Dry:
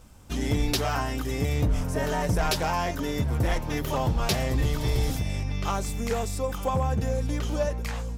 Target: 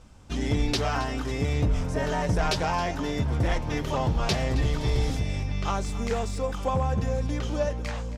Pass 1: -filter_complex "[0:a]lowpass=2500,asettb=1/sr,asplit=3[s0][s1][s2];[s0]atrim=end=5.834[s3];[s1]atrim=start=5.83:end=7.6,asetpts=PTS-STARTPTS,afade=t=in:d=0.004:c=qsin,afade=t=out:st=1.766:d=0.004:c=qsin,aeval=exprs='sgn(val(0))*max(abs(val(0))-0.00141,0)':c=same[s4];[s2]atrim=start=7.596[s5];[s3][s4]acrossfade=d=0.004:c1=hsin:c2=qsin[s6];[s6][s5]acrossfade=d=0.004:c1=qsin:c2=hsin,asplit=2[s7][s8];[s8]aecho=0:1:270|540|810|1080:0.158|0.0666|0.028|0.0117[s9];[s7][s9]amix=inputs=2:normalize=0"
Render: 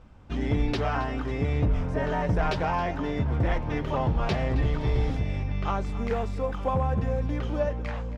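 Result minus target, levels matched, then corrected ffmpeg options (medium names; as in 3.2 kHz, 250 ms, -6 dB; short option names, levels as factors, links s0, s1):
8 kHz band -14.5 dB
-filter_complex "[0:a]lowpass=6700,asettb=1/sr,asplit=3[s0][s1][s2];[s0]atrim=end=5.834[s3];[s1]atrim=start=5.83:end=7.6,asetpts=PTS-STARTPTS,afade=t=in:d=0.004:c=qsin,afade=t=out:st=1.766:d=0.004:c=qsin,aeval=exprs='sgn(val(0))*max(abs(val(0))-0.00141,0)':c=same[s4];[s2]atrim=start=7.596[s5];[s3][s4]acrossfade=d=0.004:c1=hsin:c2=qsin[s6];[s6][s5]acrossfade=d=0.004:c1=qsin:c2=hsin,asplit=2[s7][s8];[s8]aecho=0:1:270|540|810|1080:0.158|0.0666|0.028|0.0117[s9];[s7][s9]amix=inputs=2:normalize=0"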